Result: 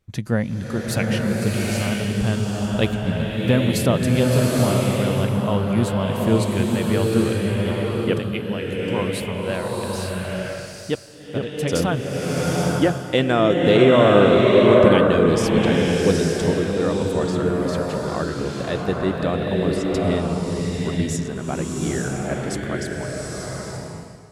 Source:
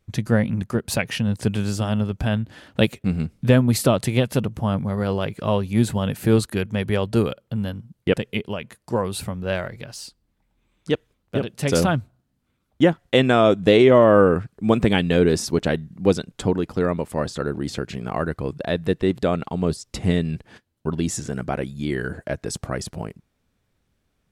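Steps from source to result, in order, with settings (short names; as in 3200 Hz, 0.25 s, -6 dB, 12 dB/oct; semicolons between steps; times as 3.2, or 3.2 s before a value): bloom reverb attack 0.88 s, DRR -2.5 dB; gain -2.5 dB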